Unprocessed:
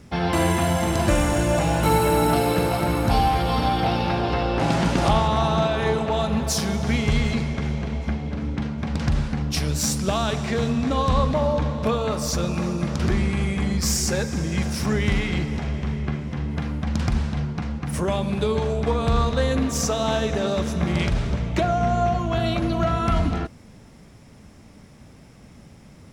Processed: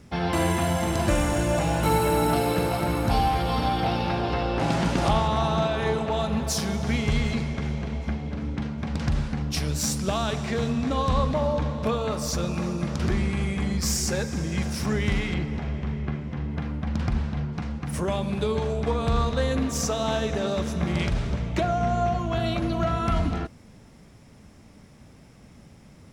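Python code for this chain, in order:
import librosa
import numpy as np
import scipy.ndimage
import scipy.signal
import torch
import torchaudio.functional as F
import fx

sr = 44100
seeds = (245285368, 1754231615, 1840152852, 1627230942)

y = fx.peak_eq(x, sr, hz=9800.0, db=-9.5, octaves=1.9, at=(15.34, 17.53))
y = F.gain(torch.from_numpy(y), -3.0).numpy()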